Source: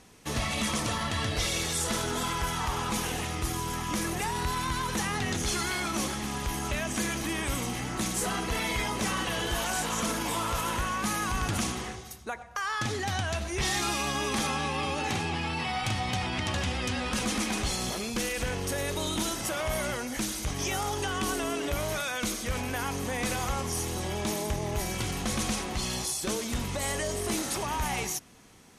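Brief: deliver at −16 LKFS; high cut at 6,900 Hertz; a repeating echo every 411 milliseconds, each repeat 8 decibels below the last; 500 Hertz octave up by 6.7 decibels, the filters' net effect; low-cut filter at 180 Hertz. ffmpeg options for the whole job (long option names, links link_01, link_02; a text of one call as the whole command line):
ffmpeg -i in.wav -af "highpass=180,lowpass=6900,equalizer=frequency=500:width_type=o:gain=8.5,aecho=1:1:411|822|1233|1644|2055:0.398|0.159|0.0637|0.0255|0.0102,volume=12.5dB" out.wav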